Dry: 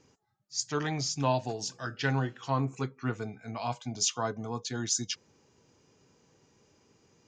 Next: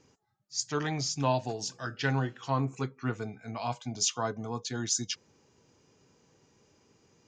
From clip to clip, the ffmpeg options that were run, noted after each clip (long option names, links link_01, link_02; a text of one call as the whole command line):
ffmpeg -i in.wav -af anull out.wav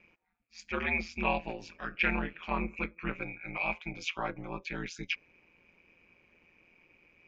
ffmpeg -i in.wav -af "lowpass=frequency=2400:width_type=q:width=16,aeval=exprs='val(0)*sin(2*PI*85*n/s)':channel_layout=same,volume=-1.5dB" out.wav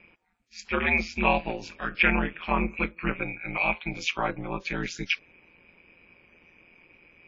ffmpeg -i in.wav -af "volume=7dB" -ar 22050 -c:a wmav2 -b:a 32k out.wma